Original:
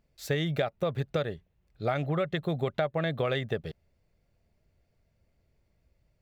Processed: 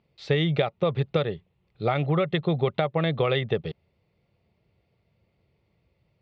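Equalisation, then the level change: cabinet simulation 110–4000 Hz, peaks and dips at 260 Hz -7 dB, 630 Hz -6 dB, 1.6 kHz -10 dB; +7.5 dB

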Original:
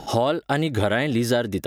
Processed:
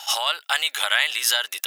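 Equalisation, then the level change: high-pass 970 Hz 24 dB/octave; peaking EQ 2.9 kHz +7 dB 0.55 oct; treble shelf 4.5 kHz +11.5 dB; +3.0 dB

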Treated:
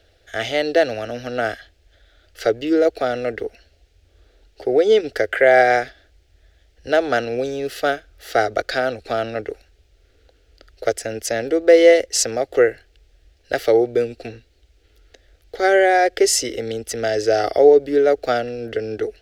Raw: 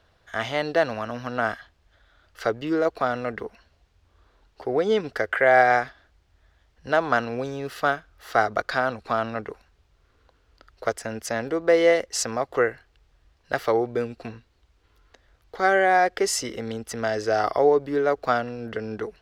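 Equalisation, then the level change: static phaser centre 430 Hz, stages 4; +8.0 dB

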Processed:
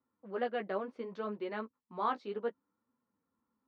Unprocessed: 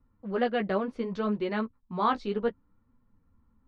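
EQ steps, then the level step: high-pass 310 Hz 12 dB/octave; treble shelf 3.9 kHz -9.5 dB; -6.0 dB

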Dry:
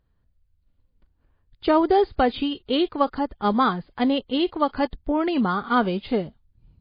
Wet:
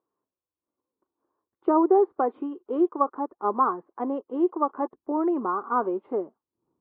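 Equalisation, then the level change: resonant high-pass 350 Hz, resonance Q 3.9; four-pole ladder low-pass 1.2 kHz, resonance 65%; 0.0 dB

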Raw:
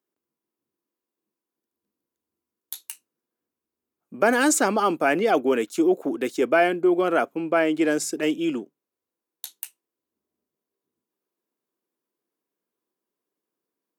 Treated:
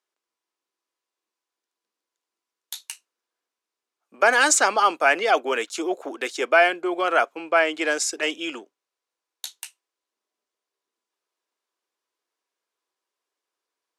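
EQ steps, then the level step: band-pass 720–6300 Hz; treble shelf 4.2 kHz +5.5 dB; +5.0 dB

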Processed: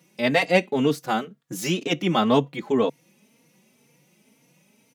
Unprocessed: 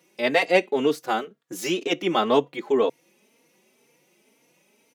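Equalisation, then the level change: tone controls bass +14 dB, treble +2 dB; peaking EQ 370 Hz -6 dB 0.57 oct; 0.0 dB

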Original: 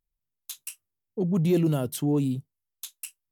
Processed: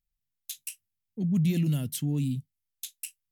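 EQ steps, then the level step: high-order bell 670 Hz -15 dB 2.4 oct; 0.0 dB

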